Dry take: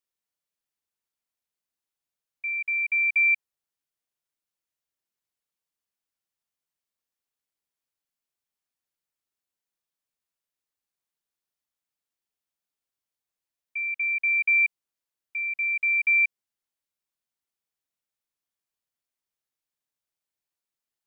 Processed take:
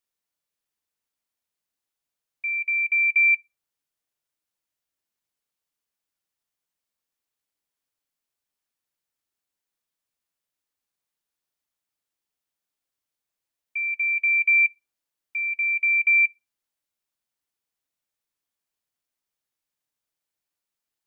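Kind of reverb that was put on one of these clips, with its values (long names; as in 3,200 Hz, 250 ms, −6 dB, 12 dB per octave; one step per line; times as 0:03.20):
feedback delay network reverb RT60 0.31 s, high-frequency decay 0.55×, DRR 17 dB
level +2.5 dB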